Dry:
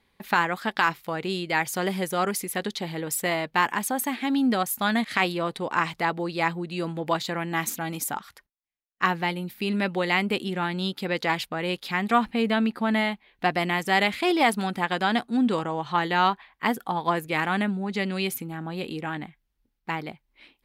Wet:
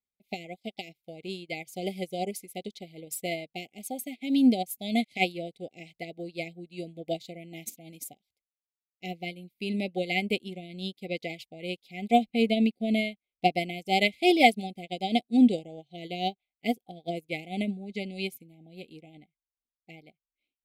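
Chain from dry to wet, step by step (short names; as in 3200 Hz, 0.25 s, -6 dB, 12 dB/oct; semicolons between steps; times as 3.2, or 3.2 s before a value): brick-wall FIR band-stop 790–2000 Hz; upward expander 2.5:1, over -44 dBFS; gain +5.5 dB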